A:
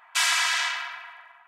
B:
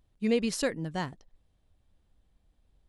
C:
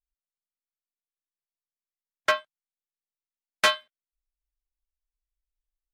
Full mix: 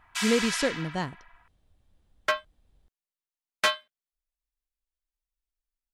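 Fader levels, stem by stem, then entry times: -7.5 dB, +2.0 dB, -3.0 dB; 0.00 s, 0.00 s, 0.00 s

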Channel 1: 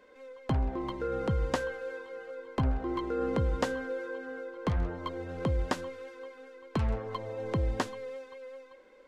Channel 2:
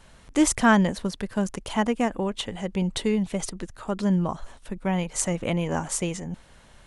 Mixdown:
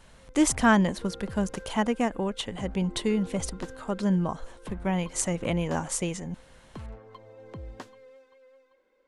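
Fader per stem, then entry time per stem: -11.5 dB, -2.0 dB; 0.00 s, 0.00 s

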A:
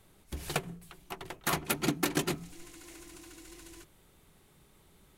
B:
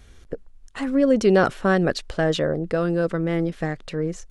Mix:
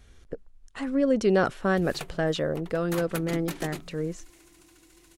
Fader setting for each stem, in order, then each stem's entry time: -6.0 dB, -5.0 dB; 1.45 s, 0.00 s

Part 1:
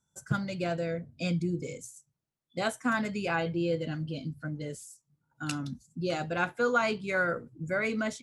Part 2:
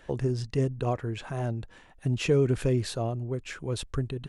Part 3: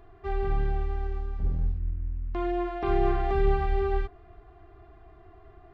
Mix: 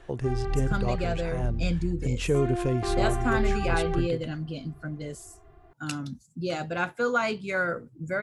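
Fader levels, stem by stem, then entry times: +1.0 dB, -1.5 dB, -2.5 dB; 0.40 s, 0.00 s, 0.00 s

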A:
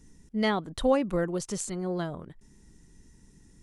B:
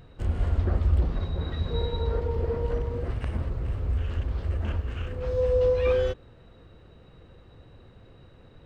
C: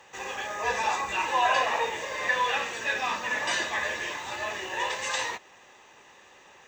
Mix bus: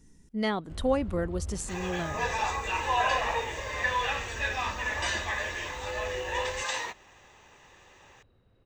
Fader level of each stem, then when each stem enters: -2.5 dB, -14.0 dB, -2.5 dB; 0.00 s, 0.50 s, 1.55 s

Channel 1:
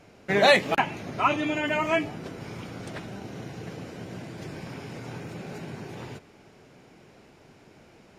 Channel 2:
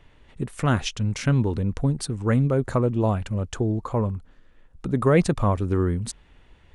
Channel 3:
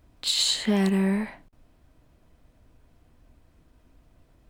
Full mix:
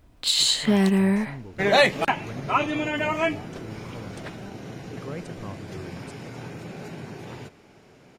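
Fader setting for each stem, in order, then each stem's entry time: +0.5 dB, -18.0 dB, +3.0 dB; 1.30 s, 0.00 s, 0.00 s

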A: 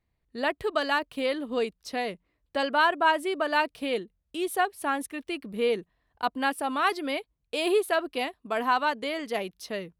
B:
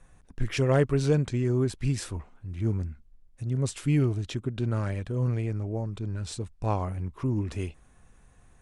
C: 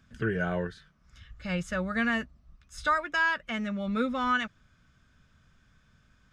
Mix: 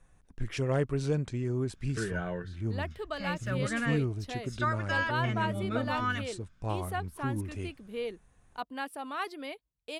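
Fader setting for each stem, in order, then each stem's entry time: -10.0 dB, -6.0 dB, -5.0 dB; 2.35 s, 0.00 s, 1.75 s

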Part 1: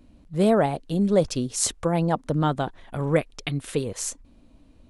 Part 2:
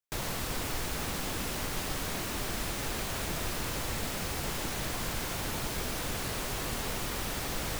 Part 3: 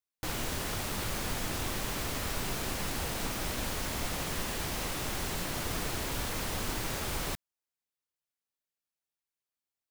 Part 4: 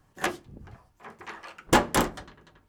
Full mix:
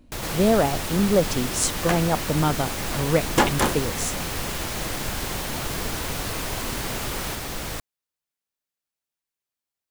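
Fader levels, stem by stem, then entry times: +0.5 dB, +3.0 dB, +2.5 dB, +1.0 dB; 0.00 s, 0.00 s, 0.00 s, 1.65 s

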